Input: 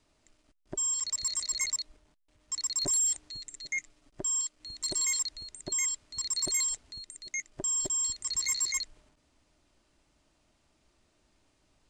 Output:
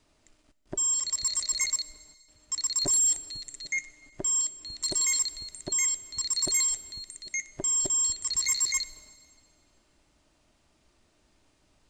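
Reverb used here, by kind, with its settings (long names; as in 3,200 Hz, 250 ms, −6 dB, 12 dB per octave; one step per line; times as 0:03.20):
dense smooth reverb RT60 1.8 s, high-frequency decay 1×, DRR 16 dB
level +3 dB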